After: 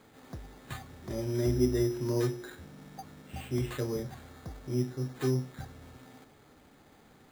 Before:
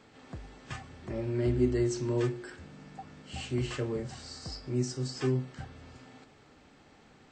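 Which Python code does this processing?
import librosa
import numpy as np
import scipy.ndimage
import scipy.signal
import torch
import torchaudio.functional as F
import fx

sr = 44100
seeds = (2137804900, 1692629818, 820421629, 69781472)

y = np.repeat(scipy.signal.resample_poly(x, 1, 8), 8)[:len(x)]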